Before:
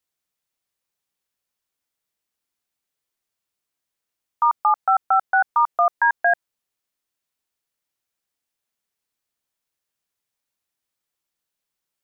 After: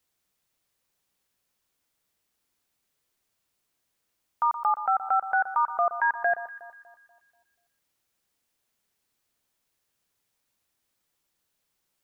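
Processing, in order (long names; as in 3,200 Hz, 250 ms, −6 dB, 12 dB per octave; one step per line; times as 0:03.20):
low-shelf EQ 440 Hz +3.5 dB
brickwall limiter −21 dBFS, peak gain reduction 12 dB
on a send: delay that swaps between a low-pass and a high-pass 121 ms, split 1,500 Hz, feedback 62%, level −12 dB
on the sum: level +5 dB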